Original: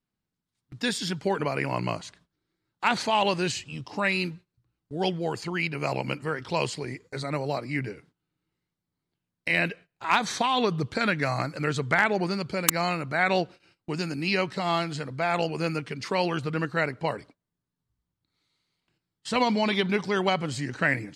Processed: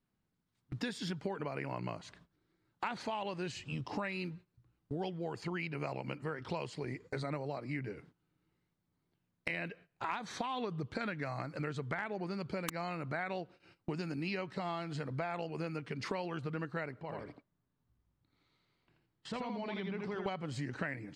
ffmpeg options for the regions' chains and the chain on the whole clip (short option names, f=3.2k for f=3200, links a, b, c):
-filter_complex "[0:a]asettb=1/sr,asplit=3[a][b][c];[a]atrim=end=17.004[d];[b]atrim=start=17:end=20.26,asetpts=PTS-STARTPTS,afade=t=in:d=0.004:c=qsin,afade=t=out:st=3.256:d=0.004:c=qsin,lowpass=f=3.8k:p=1,acompressor=threshold=-48dB:ratio=2:attack=3.2:release=140:knee=1:detection=peak,aecho=1:1:82:0.631,atrim=end_sample=143766[e];[c]atrim=start=20.256[f];[d][e]acrossfade=d=0.004:c1=hsin:c2=qsin[g];[g][f]acrossfade=d=0.004:c1=qsin:c2=hsin,highshelf=f=3.6k:g=-10.5,acompressor=threshold=-39dB:ratio=8,volume=3.5dB"